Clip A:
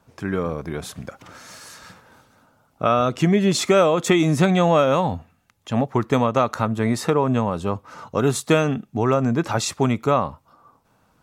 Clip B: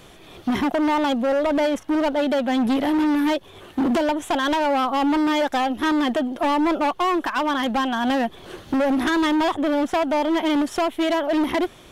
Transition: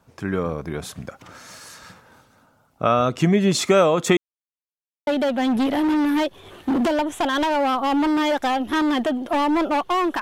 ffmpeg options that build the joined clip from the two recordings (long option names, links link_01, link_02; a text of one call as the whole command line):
ffmpeg -i cue0.wav -i cue1.wav -filter_complex "[0:a]apad=whole_dur=10.21,atrim=end=10.21,asplit=2[link_01][link_02];[link_01]atrim=end=4.17,asetpts=PTS-STARTPTS,afade=type=out:start_time=4.166:duration=0.004:curve=hsin[link_03];[link_02]atrim=start=4.17:end=5.07,asetpts=PTS-STARTPTS,volume=0[link_04];[1:a]atrim=start=2.17:end=7.31,asetpts=PTS-STARTPTS,afade=type=in:duration=0.004:curve=hsin[link_05];[link_03][link_04][link_05]concat=n=3:v=0:a=1" out.wav